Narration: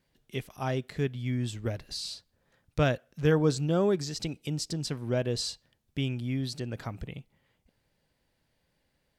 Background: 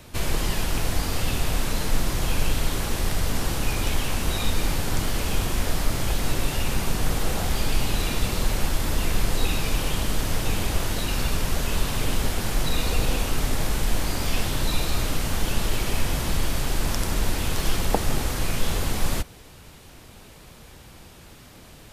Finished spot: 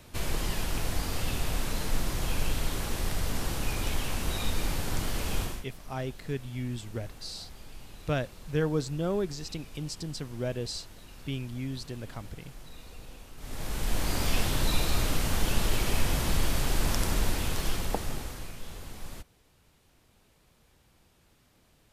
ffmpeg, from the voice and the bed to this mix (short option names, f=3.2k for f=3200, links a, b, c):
-filter_complex "[0:a]adelay=5300,volume=-4dB[a];[1:a]volume=15dB,afade=t=out:st=5.41:d=0.23:silence=0.133352,afade=t=in:st=13.37:d=0.8:silence=0.0891251,afade=t=out:st=17.05:d=1.5:silence=0.177828[b];[a][b]amix=inputs=2:normalize=0"